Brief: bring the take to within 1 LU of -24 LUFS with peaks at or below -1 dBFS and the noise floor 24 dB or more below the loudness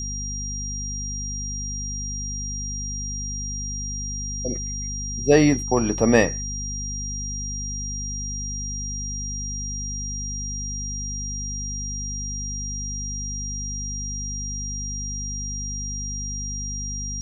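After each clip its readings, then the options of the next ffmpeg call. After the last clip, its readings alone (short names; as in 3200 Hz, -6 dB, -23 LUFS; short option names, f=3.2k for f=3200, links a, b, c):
hum 50 Hz; harmonics up to 250 Hz; hum level -29 dBFS; steady tone 5700 Hz; tone level -30 dBFS; loudness -26.5 LUFS; peak -2.0 dBFS; loudness target -24.0 LUFS
-> -af "bandreject=f=50:t=h:w=6,bandreject=f=100:t=h:w=6,bandreject=f=150:t=h:w=6,bandreject=f=200:t=h:w=6,bandreject=f=250:t=h:w=6"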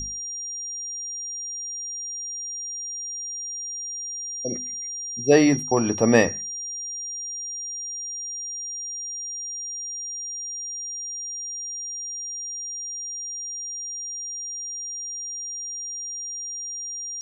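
hum none; steady tone 5700 Hz; tone level -30 dBFS
-> -af "bandreject=f=5.7k:w=30"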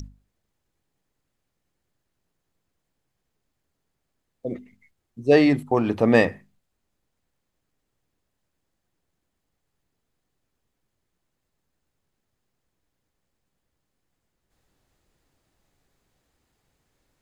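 steady tone none; loudness -20.0 LUFS; peak -3.0 dBFS; loudness target -24.0 LUFS
-> -af "volume=-4dB"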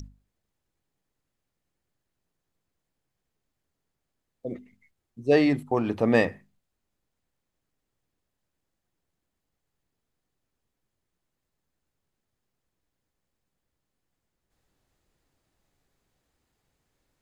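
loudness -24.0 LUFS; peak -7.0 dBFS; noise floor -83 dBFS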